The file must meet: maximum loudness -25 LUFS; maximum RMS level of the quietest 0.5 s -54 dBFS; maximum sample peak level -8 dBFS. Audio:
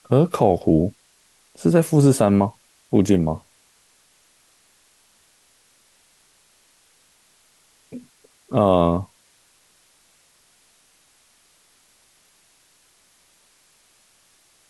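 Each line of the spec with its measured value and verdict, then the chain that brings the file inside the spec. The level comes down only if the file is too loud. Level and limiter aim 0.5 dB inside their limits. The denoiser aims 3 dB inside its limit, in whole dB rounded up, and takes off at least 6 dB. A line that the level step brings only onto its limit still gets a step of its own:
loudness -19.0 LUFS: fail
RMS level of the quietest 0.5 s -59 dBFS: OK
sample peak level -4.5 dBFS: fail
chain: gain -6.5 dB

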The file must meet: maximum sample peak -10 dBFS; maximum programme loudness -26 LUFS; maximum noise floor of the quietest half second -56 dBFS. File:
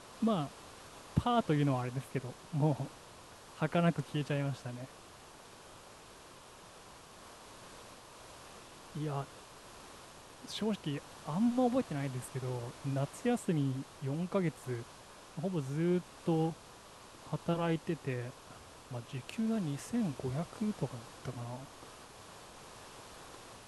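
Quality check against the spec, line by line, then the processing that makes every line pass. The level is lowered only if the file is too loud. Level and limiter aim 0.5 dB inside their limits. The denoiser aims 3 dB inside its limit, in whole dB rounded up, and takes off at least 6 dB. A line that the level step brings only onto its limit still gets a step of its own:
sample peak -14.5 dBFS: OK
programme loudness -36.0 LUFS: OK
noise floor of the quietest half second -54 dBFS: fail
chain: denoiser 6 dB, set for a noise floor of -54 dBFS

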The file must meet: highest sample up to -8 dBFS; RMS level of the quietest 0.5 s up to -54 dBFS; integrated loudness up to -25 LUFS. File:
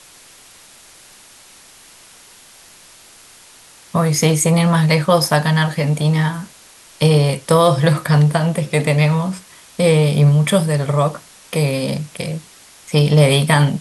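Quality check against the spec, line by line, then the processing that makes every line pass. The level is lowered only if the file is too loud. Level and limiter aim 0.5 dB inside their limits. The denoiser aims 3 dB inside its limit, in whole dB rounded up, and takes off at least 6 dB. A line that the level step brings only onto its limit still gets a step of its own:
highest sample -2.5 dBFS: fail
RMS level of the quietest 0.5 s -45 dBFS: fail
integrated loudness -16.0 LUFS: fail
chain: gain -9.5 dB

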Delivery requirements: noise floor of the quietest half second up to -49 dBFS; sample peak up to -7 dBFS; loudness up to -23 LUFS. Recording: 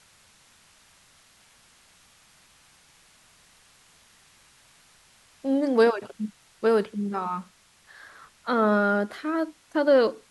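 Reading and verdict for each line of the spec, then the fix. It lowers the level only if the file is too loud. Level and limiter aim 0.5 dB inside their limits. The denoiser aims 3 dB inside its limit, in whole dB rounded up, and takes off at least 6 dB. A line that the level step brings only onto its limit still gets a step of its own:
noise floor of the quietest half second -58 dBFS: OK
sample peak -10.0 dBFS: OK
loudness -25.0 LUFS: OK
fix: none

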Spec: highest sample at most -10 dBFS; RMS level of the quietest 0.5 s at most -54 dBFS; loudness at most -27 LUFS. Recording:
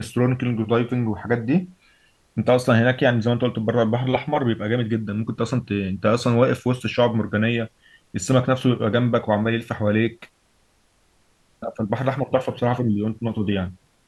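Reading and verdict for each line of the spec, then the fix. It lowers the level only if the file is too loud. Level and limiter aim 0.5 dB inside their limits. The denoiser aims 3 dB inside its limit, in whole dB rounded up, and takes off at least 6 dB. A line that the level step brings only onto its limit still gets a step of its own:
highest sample -5.5 dBFS: fail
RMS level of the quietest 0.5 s -62 dBFS: OK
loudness -22.0 LUFS: fail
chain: gain -5.5 dB

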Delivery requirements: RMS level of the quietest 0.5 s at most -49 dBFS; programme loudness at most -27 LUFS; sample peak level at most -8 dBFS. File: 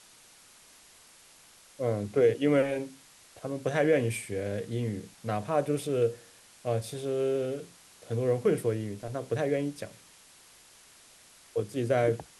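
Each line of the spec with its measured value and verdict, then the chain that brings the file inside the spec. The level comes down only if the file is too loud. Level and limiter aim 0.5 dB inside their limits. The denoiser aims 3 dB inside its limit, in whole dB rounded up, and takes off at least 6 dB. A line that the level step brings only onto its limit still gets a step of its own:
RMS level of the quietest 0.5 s -56 dBFS: OK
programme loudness -30.0 LUFS: OK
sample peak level -12.0 dBFS: OK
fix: none

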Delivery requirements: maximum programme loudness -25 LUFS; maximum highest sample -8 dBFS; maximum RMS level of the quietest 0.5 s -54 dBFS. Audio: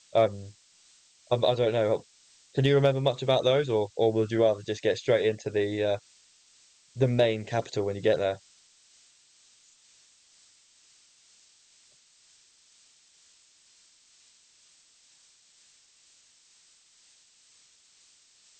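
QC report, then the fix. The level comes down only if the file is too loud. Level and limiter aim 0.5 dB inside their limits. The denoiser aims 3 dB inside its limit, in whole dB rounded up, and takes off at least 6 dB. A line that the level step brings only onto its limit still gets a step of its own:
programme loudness -26.5 LUFS: OK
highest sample -12.0 dBFS: OK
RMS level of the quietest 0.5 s -61 dBFS: OK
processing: none

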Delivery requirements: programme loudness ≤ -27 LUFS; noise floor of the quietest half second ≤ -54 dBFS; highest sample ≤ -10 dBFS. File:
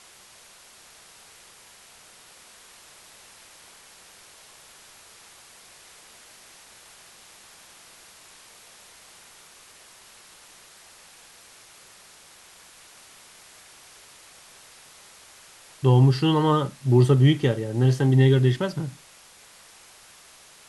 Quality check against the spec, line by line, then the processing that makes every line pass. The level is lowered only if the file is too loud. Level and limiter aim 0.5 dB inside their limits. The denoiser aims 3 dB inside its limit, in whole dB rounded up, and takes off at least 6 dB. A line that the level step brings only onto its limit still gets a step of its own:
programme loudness -20.5 LUFS: fail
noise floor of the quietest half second -51 dBFS: fail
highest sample -6.5 dBFS: fail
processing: gain -7 dB

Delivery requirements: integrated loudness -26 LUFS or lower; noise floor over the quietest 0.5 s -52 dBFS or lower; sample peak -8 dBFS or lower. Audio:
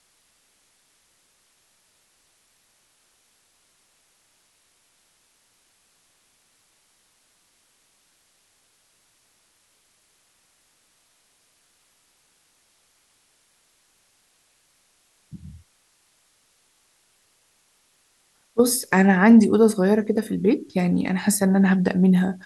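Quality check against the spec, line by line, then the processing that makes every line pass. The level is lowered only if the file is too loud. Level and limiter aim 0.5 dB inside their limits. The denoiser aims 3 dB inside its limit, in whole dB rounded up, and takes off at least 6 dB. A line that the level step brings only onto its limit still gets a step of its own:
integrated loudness -19.0 LUFS: fail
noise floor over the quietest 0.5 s -64 dBFS: OK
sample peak -5.0 dBFS: fail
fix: gain -7.5 dB

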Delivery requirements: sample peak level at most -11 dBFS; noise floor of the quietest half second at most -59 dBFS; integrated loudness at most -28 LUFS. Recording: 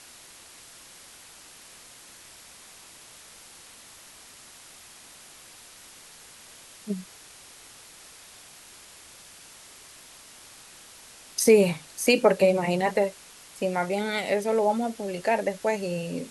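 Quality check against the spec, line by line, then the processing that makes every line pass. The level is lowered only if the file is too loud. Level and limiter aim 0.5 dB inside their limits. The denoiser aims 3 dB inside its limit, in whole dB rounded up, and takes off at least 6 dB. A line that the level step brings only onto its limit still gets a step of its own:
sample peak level -6.5 dBFS: fail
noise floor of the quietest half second -49 dBFS: fail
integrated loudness -25.0 LUFS: fail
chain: denoiser 10 dB, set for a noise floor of -49 dBFS; gain -3.5 dB; limiter -11.5 dBFS

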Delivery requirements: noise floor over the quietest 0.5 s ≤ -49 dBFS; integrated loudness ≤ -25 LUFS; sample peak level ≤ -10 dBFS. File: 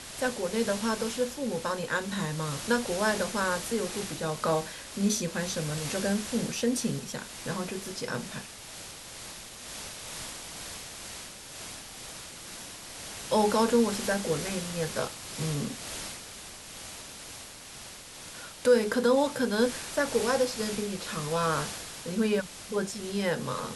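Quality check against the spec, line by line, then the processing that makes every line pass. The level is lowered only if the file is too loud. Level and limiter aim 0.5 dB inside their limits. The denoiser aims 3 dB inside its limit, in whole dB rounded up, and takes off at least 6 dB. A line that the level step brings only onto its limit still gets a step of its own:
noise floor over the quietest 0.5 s -45 dBFS: fail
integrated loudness -30.5 LUFS: OK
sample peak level -12.0 dBFS: OK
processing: denoiser 7 dB, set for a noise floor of -45 dBFS

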